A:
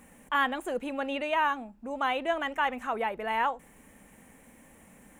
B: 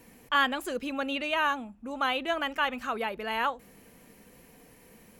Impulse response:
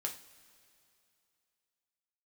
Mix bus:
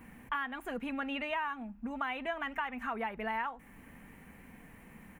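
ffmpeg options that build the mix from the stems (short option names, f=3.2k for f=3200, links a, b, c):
-filter_complex "[0:a]volume=0dB,asplit=2[a][b];[1:a]bass=f=250:g=2,treble=f=4k:g=-14,adelay=4,volume=1dB[c];[b]apad=whole_len=229376[d];[c][d]sidechaincompress=threshold=-36dB:ratio=8:attack=16:release=362[e];[a][e]amix=inputs=2:normalize=0,equalizer=f=500:t=o:w=1:g=-9,equalizer=f=2k:t=o:w=1:g=3,equalizer=f=4k:t=o:w=1:g=-5,equalizer=f=8k:t=o:w=1:g=-12,acompressor=threshold=-32dB:ratio=6"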